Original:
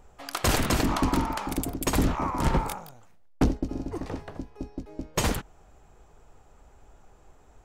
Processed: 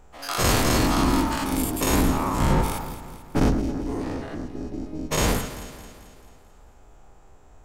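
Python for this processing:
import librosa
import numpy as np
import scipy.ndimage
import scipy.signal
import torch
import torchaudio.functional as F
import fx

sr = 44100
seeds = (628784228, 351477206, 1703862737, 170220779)

y = fx.spec_dilate(x, sr, span_ms=120)
y = fx.echo_alternate(y, sr, ms=110, hz=2000.0, feedback_pct=72, wet_db=-9.5)
y = F.gain(torch.from_numpy(y), -2.5).numpy()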